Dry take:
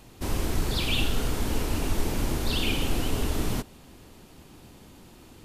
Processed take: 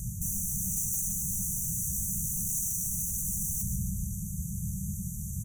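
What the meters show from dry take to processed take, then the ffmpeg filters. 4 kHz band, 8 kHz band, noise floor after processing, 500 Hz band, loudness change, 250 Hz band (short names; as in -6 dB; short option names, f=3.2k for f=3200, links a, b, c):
under -40 dB, +10.0 dB, -37 dBFS, under -40 dB, -1.5 dB, -6.5 dB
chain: -af "highpass=42,aecho=1:1:144|288|432|576|720:0.224|0.112|0.056|0.028|0.014,areverse,acompressor=threshold=-32dB:ratio=6,areverse,aeval=exprs='0.0596*sin(PI/2*6.31*val(0)/0.0596)':c=same,acrusher=bits=9:mix=0:aa=0.000001,afftfilt=real='re*(1-between(b*sr/4096,210,5800))':imag='im*(1-between(b*sr/4096,210,5800))':win_size=4096:overlap=0.75"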